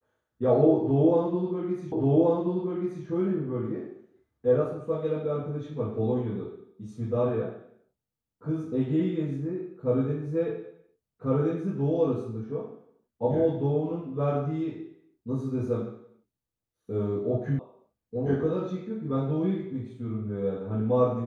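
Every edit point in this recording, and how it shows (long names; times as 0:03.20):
0:01.92: the same again, the last 1.13 s
0:17.59: cut off before it has died away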